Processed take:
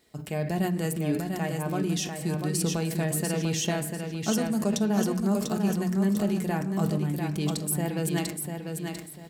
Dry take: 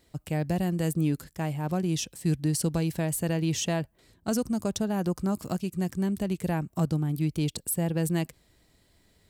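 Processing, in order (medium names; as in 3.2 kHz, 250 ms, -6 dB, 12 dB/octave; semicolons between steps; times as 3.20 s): recorder AGC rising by 7.2 dB/s; high-pass 180 Hz 6 dB/octave; comb 4.7 ms, depth 33%; feedback delay 695 ms, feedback 30%, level -5.5 dB; on a send at -5.5 dB: reverberation RT60 0.70 s, pre-delay 3 ms; on the sum: decay stretcher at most 71 dB/s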